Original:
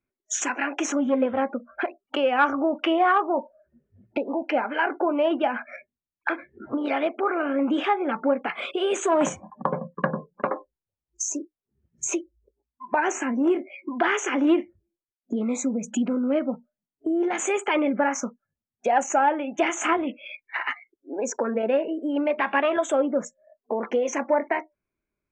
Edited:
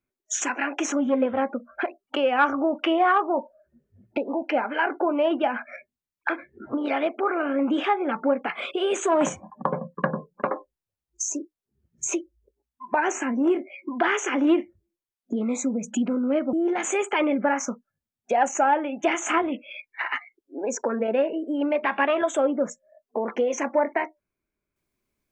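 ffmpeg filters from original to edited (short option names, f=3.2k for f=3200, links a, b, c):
-filter_complex "[0:a]asplit=2[a][b];[a]atrim=end=16.532[c];[b]atrim=start=17.078[d];[c][d]acrossfade=d=0.004:c1=hsin:c2=hsin"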